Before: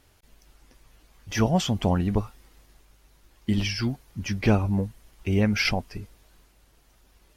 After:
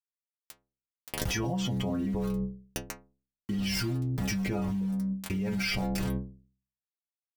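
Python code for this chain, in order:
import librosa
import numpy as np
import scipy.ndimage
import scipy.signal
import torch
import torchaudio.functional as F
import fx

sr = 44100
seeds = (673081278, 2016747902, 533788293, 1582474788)

y = fx.doppler_pass(x, sr, speed_mps=5, closest_m=2.5, pass_at_s=1.48)
y = fx.low_shelf(y, sr, hz=490.0, db=8.5)
y = fx.rider(y, sr, range_db=5, speed_s=2.0)
y = fx.dmg_buzz(y, sr, base_hz=50.0, harmonics=4, level_db=-48.0, tilt_db=-5, odd_only=False)
y = fx.low_shelf(y, sr, hz=230.0, db=-4.5)
y = np.where(np.abs(y) >= 10.0 ** (-43.5 / 20.0), y, 0.0)
y = fx.stiff_resonator(y, sr, f0_hz=62.0, decay_s=0.51, stiffness=0.008)
y = fx.env_flatten(y, sr, amount_pct=100)
y = y * 10.0 ** (-1.5 / 20.0)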